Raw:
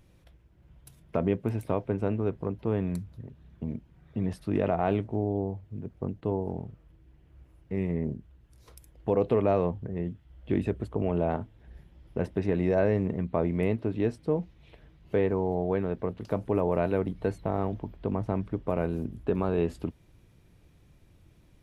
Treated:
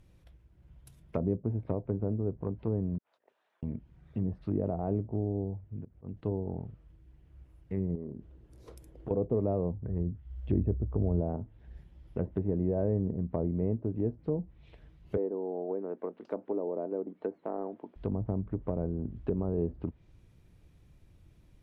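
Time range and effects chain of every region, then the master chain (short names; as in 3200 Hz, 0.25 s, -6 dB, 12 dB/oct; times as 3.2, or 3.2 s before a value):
2.98–3.63 negative-ratio compressor -45 dBFS, ratio -0.5 + HPF 640 Hz 24 dB/oct + high shelf 2300 Hz -9 dB
5.44–6.17 auto swell 0.127 s + air absorption 450 m
7.95–9.11 bell 390 Hz +13.5 dB 2.1 oct + compressor 5:1, threshold -34 dBFS
9.86–11.21 bell 63 Hz +10 dB 1.3 oct + short-mantissa float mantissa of 6-bit
15.17–17.96 HPF 270 Hz 24 dB/oct + high shelf 2800 Hz -12 dB
whole clip: treble ducked by the level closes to 570 Hz, closed at -25 dBFS; low shelf 130 Hz +6 dB; gain -4.5 dB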